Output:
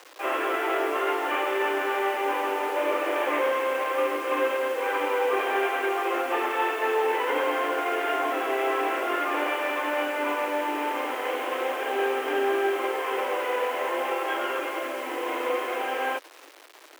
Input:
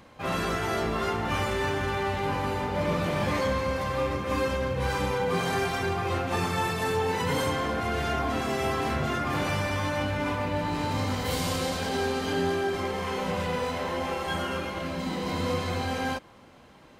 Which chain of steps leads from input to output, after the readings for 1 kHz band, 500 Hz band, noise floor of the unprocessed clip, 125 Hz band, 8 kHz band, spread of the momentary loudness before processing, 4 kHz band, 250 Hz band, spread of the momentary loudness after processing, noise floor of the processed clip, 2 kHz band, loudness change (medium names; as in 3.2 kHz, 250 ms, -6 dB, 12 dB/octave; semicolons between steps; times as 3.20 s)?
+3.5 dB, +3.5 dB, -52 dBFS, under -40 dB, -4.5 dB, 3 LU, -2.0 dB, -3.5 dB, 4 LU, -48 dBFS, +3.5 dB, +2.0 dB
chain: CVSD coder 16 kbps; bit crusher 8-bit; steep high-pass 300 Hz 72 dB/octave; trim +4 dB